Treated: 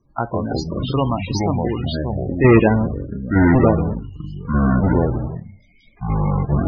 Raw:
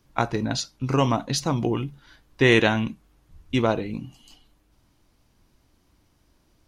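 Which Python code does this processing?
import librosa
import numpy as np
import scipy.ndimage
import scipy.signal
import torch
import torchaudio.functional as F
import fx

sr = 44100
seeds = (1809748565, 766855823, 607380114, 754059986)

y = fx.halfwave_hold(x, sr, at=(2.44, 3.94))
y = fx.echo_pitch(y, sr, ms=94, semitones=-5, count=3, db_per_echo=-3.0)
y = fx.spec_topn(y, sr, count=32)
y = y * librosa.db_to_amplitude(1.5)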